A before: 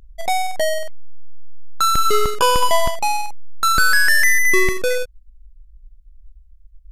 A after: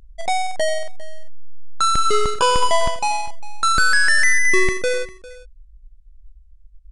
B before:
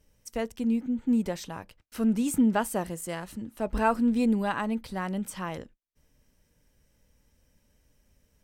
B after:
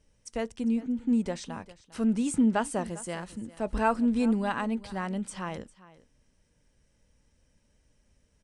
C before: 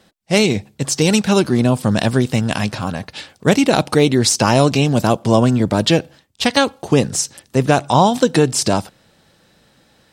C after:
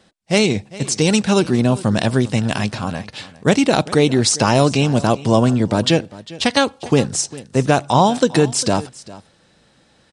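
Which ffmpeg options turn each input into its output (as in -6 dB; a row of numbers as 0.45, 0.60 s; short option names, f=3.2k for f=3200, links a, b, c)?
-af "aecho=1:1:401:0.112,aresample=22050,aresample=44100,volume=-1dB"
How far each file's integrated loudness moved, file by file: -1.0, -1.0, -1.0 LU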